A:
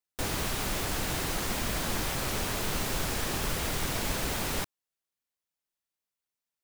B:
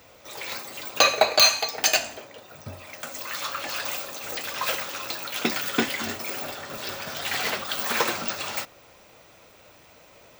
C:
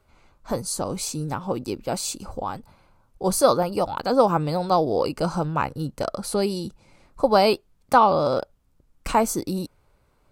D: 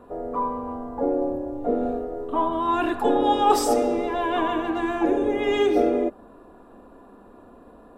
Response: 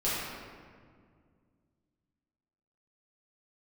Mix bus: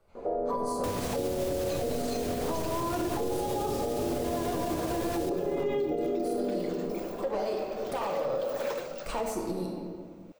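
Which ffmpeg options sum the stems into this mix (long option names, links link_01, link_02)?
-filter_complex "[0:a]highpass=80,lowshelf=frequency=170:gain=10.5,adelay=650,volume=1.5dB,asplit=2[link_01][link_02];[link_02]volume=-17.5dB[link_03];[1:a]adelay=700,volume=-17dB[link_04];[2:a]bandreject=frequency=410:width=12,acompressor=threshold=-26dB:ratio=2,asoftclip=type=tanh:threshold=-25.5dB,volume=-11.5dB,asplit=2[link_05][link_06];[link_06]volume=-3.5dB[link_07];[3:a]equalizer=frequency=8900:width=0.49:gain=-14.5,adelay=150,volume=-3dB,asplit=3[link_08][link_09][link_10];[link_09]volume=-11dB[link_11];[link_10]volume=-7dB[link_12];[4:a]atrim=start_sample=2205[link_13];[link_07][link_11]amix=inputs=2:normalize=0[link_14];[link_14][link_13]afir=irnorm=-1:irlink=0[link_15];[link_03][link_12]amix=inputs=2:normalize=0,aecho=0:1:337:1[link_16];[link_01][link_04][link_05][link_08][link_15][link_16]amix=inputs=6:normalize=0,equalizer=frequency=510:width_type=o:width=1.2:gain=10.5,acrossover=split=280|3000[link_17][link_18][link_19];[link_18]acompressor=threshold=-20dB:ratio=6[link_20];[link_17][link_20][link_19]amix=inputs=3:normalize=0,alimiter=limit=-22dB:level=0:latency=1:release=200"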